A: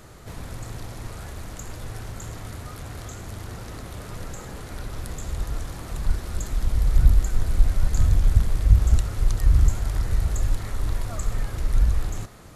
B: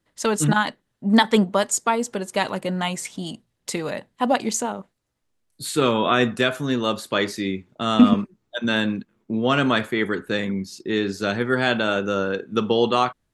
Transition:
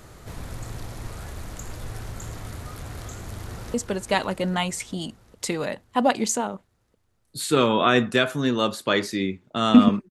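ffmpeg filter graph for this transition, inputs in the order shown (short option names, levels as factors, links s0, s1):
-filter_complex "[0:a]apad=whole_dur=10.1,atrim=end=10.1,atrim=end=3.742[s0];[1:a]atrim=start=1.988:end=8.35[s1];[s0][s1]acrossfade=d=0.004:c1=hsin:c2=hsin,asplit=2[s2][s3];[s3]afade=t=in:st=3.32:d=0.01,afade=t=out:st=3.74:d=0.01,aecho=0:1:400|800|1200|1600|2000|2400|2800|3200|3600:0.421697|0.274103|0.178167|0.115808|0.0752755|0.048929|0.0318039|0.0206725|0.0134371[s4];[s2][s4]amix=inputs=2:normalize=0"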